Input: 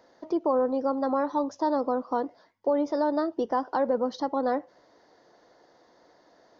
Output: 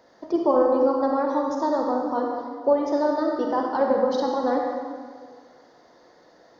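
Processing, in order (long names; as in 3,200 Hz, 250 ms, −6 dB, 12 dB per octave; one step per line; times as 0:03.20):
in parallel at −1.5 dB: output level in coarse steps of 23 dB
on the sum: convolution reverb RT60 1.8 s, pre-delay 33 ms, DRR 0 dB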